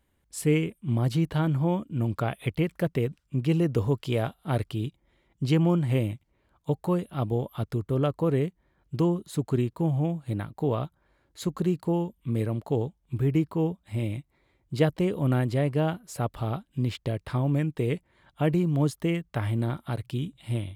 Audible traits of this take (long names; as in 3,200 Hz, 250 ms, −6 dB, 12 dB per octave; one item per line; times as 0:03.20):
background noise floor −71 dBFS
spectral slope −8.0 dB per octave